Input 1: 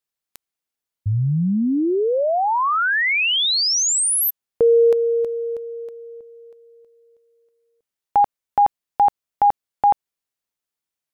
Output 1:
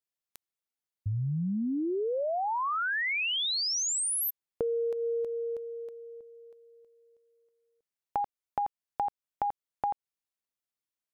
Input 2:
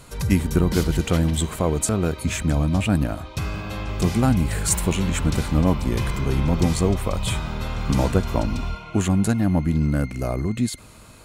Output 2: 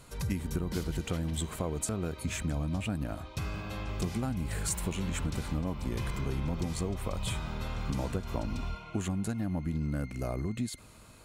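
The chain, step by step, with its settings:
downward compressor 10 to 1, threshold −20 dBFS
level −8 dB

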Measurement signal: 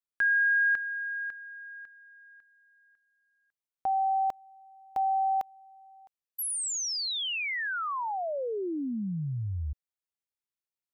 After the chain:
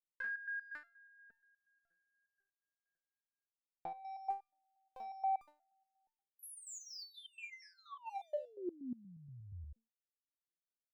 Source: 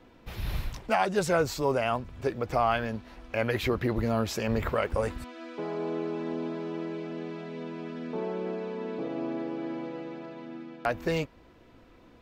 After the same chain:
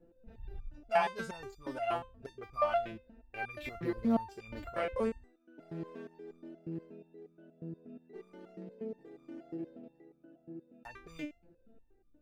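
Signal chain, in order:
adaptive Wiener filter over 41 samples
step-sequenced resonator 8.4 Hz 170–1,200 Hz
level +8.5 dB

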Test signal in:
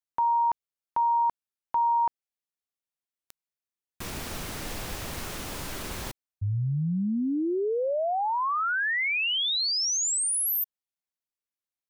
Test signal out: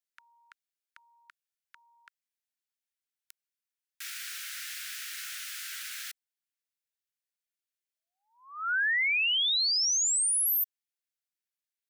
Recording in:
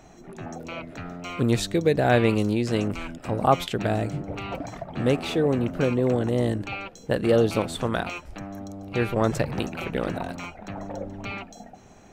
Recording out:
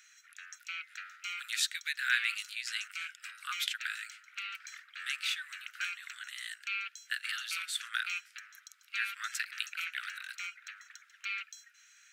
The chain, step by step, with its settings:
Butterworth high-pass 1,400 Hz 72 dB per octave

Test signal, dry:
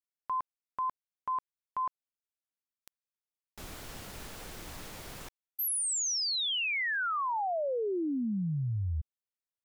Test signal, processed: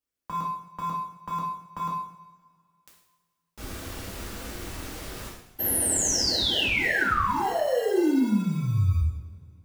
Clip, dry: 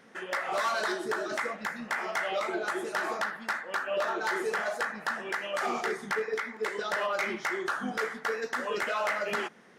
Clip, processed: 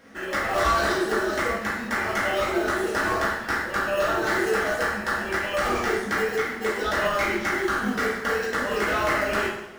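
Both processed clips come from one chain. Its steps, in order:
in parallel at −8.5 dB: sample-rate reduction 1,200 Hz, jitter 0%
on the sum: coupled-rooms reverb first 0.72 s, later 2.6 s, from −21 dB, DRR −5 dB

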